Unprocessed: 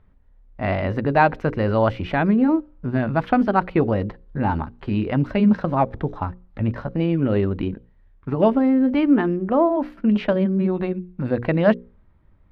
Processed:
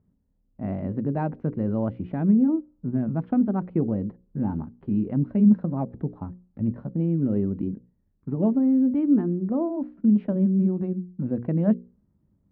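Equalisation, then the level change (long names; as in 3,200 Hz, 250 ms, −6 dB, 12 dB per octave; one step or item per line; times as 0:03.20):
resonant band-pass 200 Hz, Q 1.5
0.0 dB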